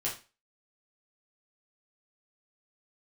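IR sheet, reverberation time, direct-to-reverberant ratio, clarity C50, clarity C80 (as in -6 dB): 0.30 s, -6.0 dB, 8.0 dB, 14.5 dB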